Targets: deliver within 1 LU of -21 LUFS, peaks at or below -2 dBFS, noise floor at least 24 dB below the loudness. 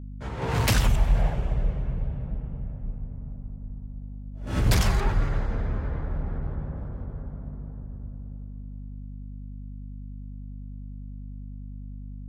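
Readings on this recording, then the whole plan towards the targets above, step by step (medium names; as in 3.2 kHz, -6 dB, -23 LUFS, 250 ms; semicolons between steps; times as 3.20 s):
hum 50 Hz; highest harmonic 250 Hz; hum level -35 dBFS; loudness -29.5 LUFS; peak level -11.0 dBFS; loudness target -21.0 LUFS
-> de-hum 50 Hz, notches 5; trim +8.5 dB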